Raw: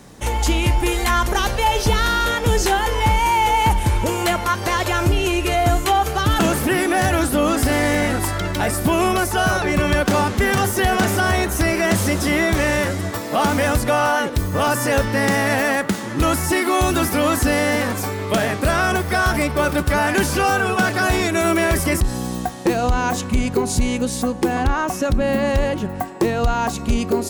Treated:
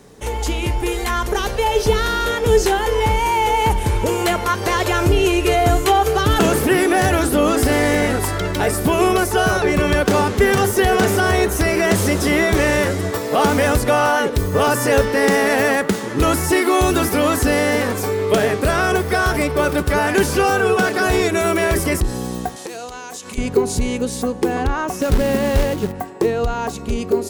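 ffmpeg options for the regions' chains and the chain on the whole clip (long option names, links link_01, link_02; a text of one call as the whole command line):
ffmpeg -i in.wav -filter_complex "[0:a]asettb=1/sr,asplit=3[link_01][link_02][link_03];[link_01]atrim=end=22.564[link_04];[link_02]atrim=start=22.56:end=23.38,asetpts=PTS-STARTPTS,afade=type=in:duration=0.004:curve=qsin,afade=type=out:start_time=0.816:duration=0.004:curve=qsin,lowpass=8100,aemphasis=mode=production:type=riaa,acompressor=threshold=-27dB:ratio=10:attack=3.2:release=140:knee=1:detection=peak[link_05];[link_03]atrim=start=23.376[link_06];[link_04][link_05]acrossfade=duration=0.004:curve1=hsin:curve2=qsin[link_07];[link_07][link_06]acrossfade=duration=0.004:curve1=qsin:curve2=hsin,asettb=1/sr,asplit=3[link_08][link_09][link_10];[link_08]atrim=end=25.004[link_11];[link_09]atrim=start=25:end=25.92,asetpts=PTS-STARTPTS,afade=type=in:duration=0.004:curve=qsin,afade=type=out:start_time=0.916:duration=0.004:curve=qsin,lowshelf=frequency=270:gain=4.5,acrusher=bits=3:mode=log:mix=0:aa=0.000001[link_12];[link_10]atrim=start=25.916[link_13];[link_11][link_12]acrossfade=duration=0.004:curve1=hsin:curve2=qsin[link_14];[link_14][link_13]acrossfade=duration=0.004:curve1=qsin:curve2=hsin,equalizer=frequency=430:width_type=o:width=0.28:gain=11,bandreject=frequency=110.2:width_type=h:width=4,bandreject=frequency=220.4:width_type=h:width=4,bandreject=frequency=330.6:width_type=h:width=4,dynaudnorm=framelen=190:gausssize=17:maxgain=11.5dB,volume=-3.5dB" out.wav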